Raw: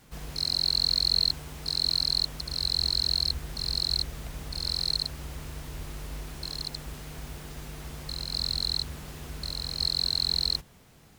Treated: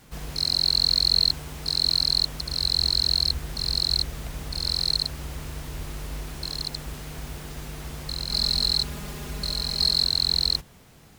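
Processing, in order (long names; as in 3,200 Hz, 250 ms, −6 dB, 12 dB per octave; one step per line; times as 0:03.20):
0:08.30–0:10.04: comb filter 4.9 ms, depth 81%
level +4 dB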